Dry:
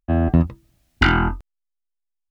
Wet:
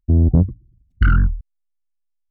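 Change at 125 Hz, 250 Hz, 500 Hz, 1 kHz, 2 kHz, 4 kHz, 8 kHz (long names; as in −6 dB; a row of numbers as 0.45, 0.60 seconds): +5.0 dB, −1.0 dB, −5.0 dB, −8.5 dB, −7.0 dB, −16.0 dB, can't be measured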